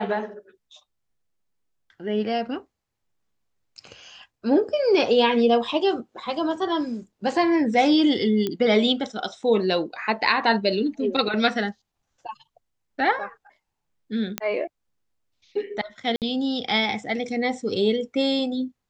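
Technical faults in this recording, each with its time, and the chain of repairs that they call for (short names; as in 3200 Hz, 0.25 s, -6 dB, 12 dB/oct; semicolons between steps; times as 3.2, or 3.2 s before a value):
8.47 pop -13 dBFS
14.38 pop -8 dBFS
16.16–16.22 gap 58 ms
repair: de-click; interpolate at 16.16, 58 ms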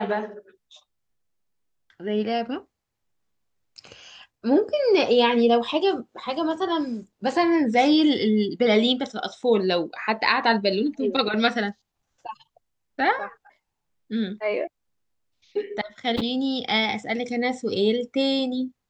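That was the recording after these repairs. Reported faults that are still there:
none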